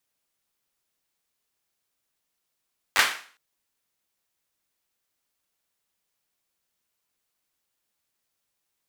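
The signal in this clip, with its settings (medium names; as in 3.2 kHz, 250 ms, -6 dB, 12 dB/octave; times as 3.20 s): hand clap length 0.41 s, apart 10 ms, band 1.7 kHz, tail 0.44 s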